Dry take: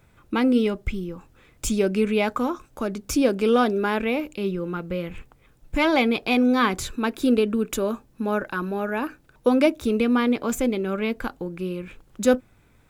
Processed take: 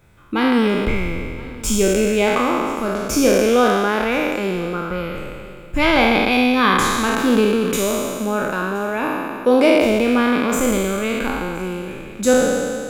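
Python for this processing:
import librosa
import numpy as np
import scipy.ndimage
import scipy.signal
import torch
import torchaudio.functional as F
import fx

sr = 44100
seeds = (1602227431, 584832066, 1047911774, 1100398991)

y = fx.spec_trails(x, sr, decay_s=2.15)
y = y + 10.0 ** (-22.5 / 20.0) * np.pad(y, (int(1022 * sr / 1000.0), 0))[:len(y)]
y = y * librosa.db_to_amplitude(1.5)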